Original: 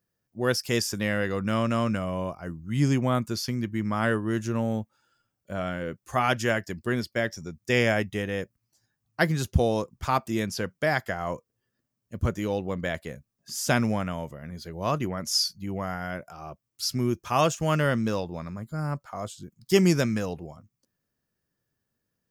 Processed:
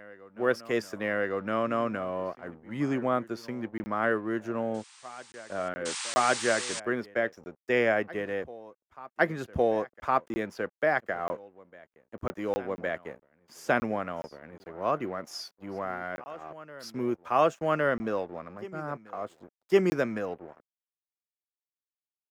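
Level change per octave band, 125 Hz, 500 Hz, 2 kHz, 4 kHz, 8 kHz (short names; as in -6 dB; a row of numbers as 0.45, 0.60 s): -13.0, 0.0, -1.5, -8.5, -5.5 dB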